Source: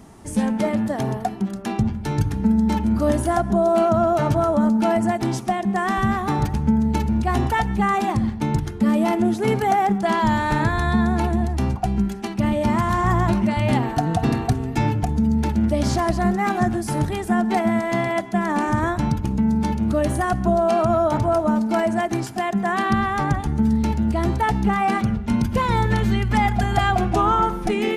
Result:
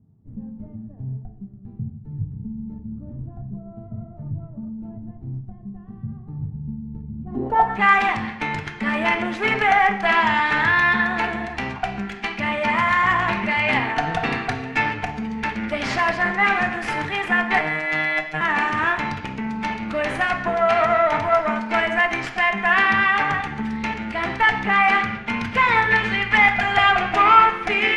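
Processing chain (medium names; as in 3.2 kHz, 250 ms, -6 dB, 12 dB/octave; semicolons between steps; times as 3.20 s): tilt EQ +4.5 dB/octave; Chebyshev shaper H 8 -22 dB, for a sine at -5 dBFS; low-pass sweep 130 Hz -> 2.2 kHz, 7.17–7.81 s; 17.58–18.41 s: robot voice 155 Hz; on a send: reverberation RT60 0.85 s, pre-delay 3 ms, DRR 5 dB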